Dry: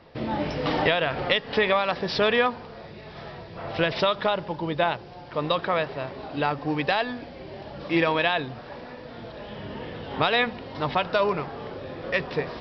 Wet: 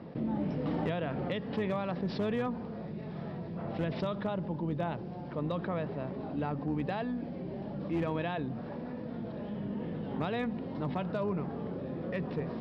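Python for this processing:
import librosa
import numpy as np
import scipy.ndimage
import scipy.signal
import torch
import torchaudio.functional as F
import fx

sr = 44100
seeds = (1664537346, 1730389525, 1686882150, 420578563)

y = fx.octave_divider(x, sr, octaves=2, level_db=-3.0)
y = fx.bandpass_q(y, sr, hz=190.0, q=2.3)
y = fx.tilt_eq(y, sr, slope=2.5)
y = fx.clip_asym(y, sr, top_db=-31.5, bottom_db=-30.5)
y = fx.env_flatten(y, sr, amount_pct=50)
y = y * librosa.db_to_amplitude(4.5)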